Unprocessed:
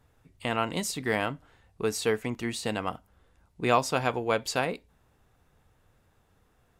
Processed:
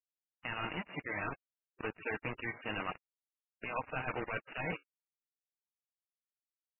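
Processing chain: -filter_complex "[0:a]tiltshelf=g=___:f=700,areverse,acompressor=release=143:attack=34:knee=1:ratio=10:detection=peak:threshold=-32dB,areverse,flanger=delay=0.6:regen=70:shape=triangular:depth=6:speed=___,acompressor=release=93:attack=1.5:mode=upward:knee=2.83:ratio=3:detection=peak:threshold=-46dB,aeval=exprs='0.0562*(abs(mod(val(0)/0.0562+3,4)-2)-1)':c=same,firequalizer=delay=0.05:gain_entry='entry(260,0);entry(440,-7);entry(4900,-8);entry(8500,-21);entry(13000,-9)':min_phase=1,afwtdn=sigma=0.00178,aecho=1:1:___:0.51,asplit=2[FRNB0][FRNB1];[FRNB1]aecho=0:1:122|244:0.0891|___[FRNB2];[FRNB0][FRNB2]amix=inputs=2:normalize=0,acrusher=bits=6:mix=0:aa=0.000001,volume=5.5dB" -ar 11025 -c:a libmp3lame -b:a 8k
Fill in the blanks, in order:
-9.5, 2, 6.4, 0.0294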